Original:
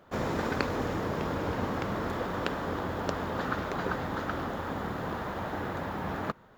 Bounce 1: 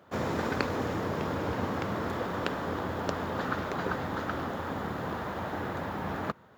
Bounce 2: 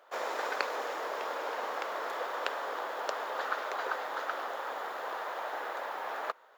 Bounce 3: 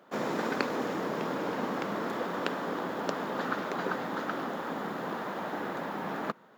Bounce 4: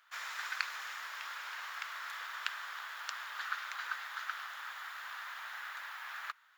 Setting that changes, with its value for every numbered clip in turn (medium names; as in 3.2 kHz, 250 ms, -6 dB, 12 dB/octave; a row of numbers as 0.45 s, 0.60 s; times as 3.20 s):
high-pass, cutoff frequency: 62 Hz, 510 Hz, 180 Hz, 1.4 kHz